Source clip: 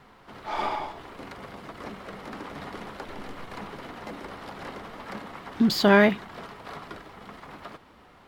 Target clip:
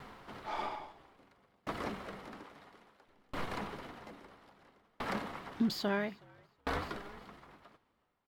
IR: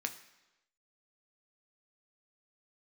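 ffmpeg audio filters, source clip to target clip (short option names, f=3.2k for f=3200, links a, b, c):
-filter_complex "[0:a]asettb=1/sr,asplit=3[a][b][c];[a]atrim=end=2.444[d];[b]atrim=start=2.44:end=3.08,asetpts=PTS-STARTPTS,afade=t=in:d=0.004:c=qsin,afade=t=out:st=0.636:d=0.004:c=qsin,lowshelf=f=220:g=-9.5[e];[c]atrim=start=3.076[f];[d][e]acrossfade=d=0.004:c1=hsin:c2=qsin[g];[g][f]acrossfade=d=0.004:c1=qsin:c2=hsin,asplit=5[h][i][j][k][l];[i]adelay=369,afreqshift=-65,volume=-19.5dB[m];[j]adelay=738,afreqshift=-130,volume=-25.2dB[n];[k]adelay=1107,afreqshift=-195,volume=-30.9dB[o];[l]adelay=1476,afreqshift=-260,volume=-36.5dB[p];[h][m][n][o][p]amix=inputs=5:normalize=0,aeval=exprs='val(0)*pow(10,-36*if(lt(mod(0.6*n/s,1),2*abs(0.6)/1000),1-mod(0.6*n/s,1)/(2*abs(0.6)/1000),(mod(0.6*n/s,1)-2*abs(0.6)/1000)/(1-2*abs(0.6)/1000))/20)':c=same,volume=4dB"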